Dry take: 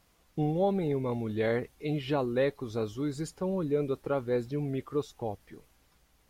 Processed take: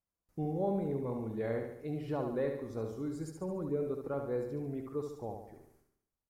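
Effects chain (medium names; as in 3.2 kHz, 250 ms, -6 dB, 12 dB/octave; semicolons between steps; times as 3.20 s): gate with hold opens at -54 dBFS; peaking EQ 3.2 kHz -13.5 dB 1.2 oct; on a send: feedback delay 71 ms, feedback 52%, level -5.5 dB; on the sum: trim -6.5 dB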